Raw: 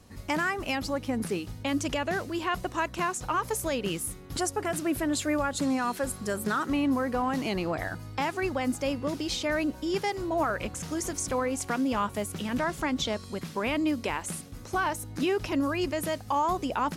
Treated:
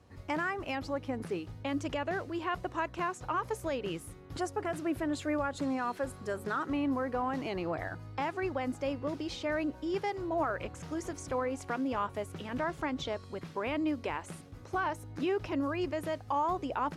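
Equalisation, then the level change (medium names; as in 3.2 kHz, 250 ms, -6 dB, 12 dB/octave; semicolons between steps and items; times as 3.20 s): high-pass 56 Hz; low-pass 1.9 kHz 6 dB/octave; peaking EQ 210 Hz -9.5 dB 0.42 oct; -3.0 dB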